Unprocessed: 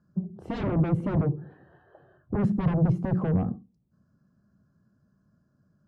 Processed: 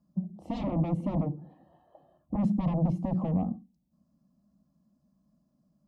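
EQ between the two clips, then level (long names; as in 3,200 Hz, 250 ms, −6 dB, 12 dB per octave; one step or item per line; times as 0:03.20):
phaser with its sweep stopped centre 410 Hz, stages 6
0.0 dB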